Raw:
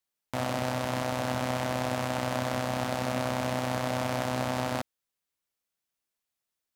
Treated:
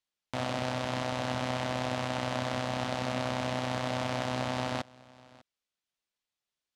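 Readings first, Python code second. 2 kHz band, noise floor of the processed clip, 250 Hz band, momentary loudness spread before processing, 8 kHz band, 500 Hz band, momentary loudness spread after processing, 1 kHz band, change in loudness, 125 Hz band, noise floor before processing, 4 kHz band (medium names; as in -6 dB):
-1.5 dB, under -85 dBFS, -2.5 dB, 2 LU, -4.5 dB, -2.5 dB, 2 LU, -2.0 dB, -2.0 dB, -2.0 dB, under -85 dBFS, +0.5 dB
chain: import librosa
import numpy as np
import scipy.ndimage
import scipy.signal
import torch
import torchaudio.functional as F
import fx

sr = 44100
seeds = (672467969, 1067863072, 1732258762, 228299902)

y = scipy.signal.sosfilt(scipy.signal.butter(2, 7300.0, 'lowpass', fs=sr, output='sos'), x)
y = fx.peak_eq(y, sr, hz=3400.0, db=4.0, octaves=1.0)
y = y + 10.0 ** (-23.0 / 20.0) * np.pad(y, (int(599 * sr / 1000.0), 0))[:len(y)]
y = F.gain(torch.from_numpy(y), -2.5).numpy()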